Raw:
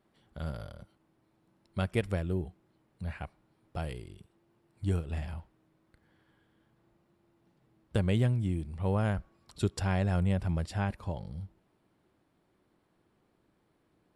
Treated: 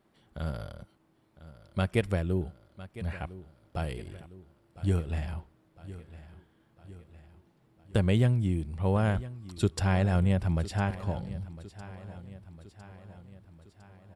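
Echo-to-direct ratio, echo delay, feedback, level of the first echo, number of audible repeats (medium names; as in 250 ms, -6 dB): -15.0 dB, 1006 ms, 56%, -16.5 dB, 4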